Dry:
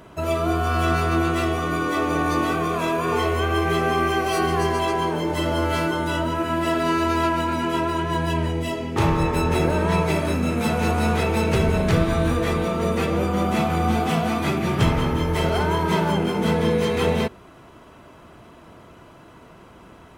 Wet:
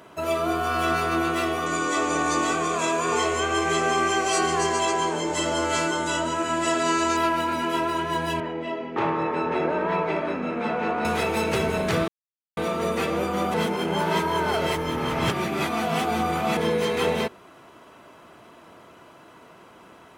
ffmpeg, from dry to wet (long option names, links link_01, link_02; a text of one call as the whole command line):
ffmpeg -i in.wav -filter_complex "[0:a]asettb=1/sr,asplit=3[link_01][link_02][link_03];[link_01]atrim=end=1.664[link_04];[link_02]atrim=start=1.66:end=7.17,asetpts=PTS-STARTPTS,afade=type=in:duration=0.004:curve=qsin,afade=type=out:start_time=5.506:duration=0.004:curve=qsin,lowpass=frequency=7400:width_type=q:width=5.9[link_05];[link_03]atrim=start=7.166[link_06];[link_04][link_05]acrossfade=duration=0.004:curve1=hsin:curve2=qsin[link_07];[link_07][link_06]acrossfade=duration=0.004:curve1=qsin:curve2=hsin,asettb=1/sr,asplit=3[link_08][link_09][link_10];[link_08]atrim=end=8.404[link_11];[link_09]atrim=start=8.4:end=11.05,asetpts=PTS-STARTPTS,afade=type=in:duration=0.004:curve=qsin,afade=type=out:start_time=2.646:duration=0.004:curve=qsin,highpass=180,lowpass=2200[link_12];[link_10]atrim=start=11.046[link_13];[link_11][link_12]acrossfade=duration=0.004:curve1=hsin:curve2=qsin[link_14];[link_14][link_13]acrossfade=duration=0.004:curve1=qsin:curve2=hsin,asplit=5[link_15][link_16][link_17][link_18][link_19];[link_15]atrim=end=12.08,asetpts=PTS-STARTPTS,afade=type=out:start_time=12.076:duration=0.004:curve=hsin[link_20];[link_16]atrim=start=12.08:end=12.57,asetpts=PTS-STARTPTS,volume=0[link_21];[link_17]atrim=start=12.57:end=13.542,asetpts=PTS-STARTPTS,afade=type=in:duration=0.004:curve=hsin[link_22];[link_18]atrim=start=13.538:end=16.572,asetpts=PTS-STARTPTS,areverse[link_23];[link_19]atrim=start=16.568[link_24];[link_20][link_21][link_22]concat=n=3:v=0:a=1[link_25];[link_25][link_23]acrossfade=duration=0.004:curve1=hsin:curve2=hsin[link_26];[link_26][link_24]acrossfade=duration=0.004:curve1=hsin:curve2=hsin,highpass=frequency=350:poles=1" out.wav